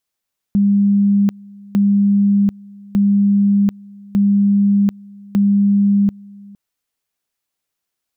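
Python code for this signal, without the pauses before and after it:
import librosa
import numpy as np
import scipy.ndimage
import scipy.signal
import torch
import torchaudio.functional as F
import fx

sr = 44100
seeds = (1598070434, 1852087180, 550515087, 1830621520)

y = fx.two_level_tone(sr, hz=201.0, level_db=-10.0, drop_db=25.0, high_s=0.74, low_s=0.46, rounds=5)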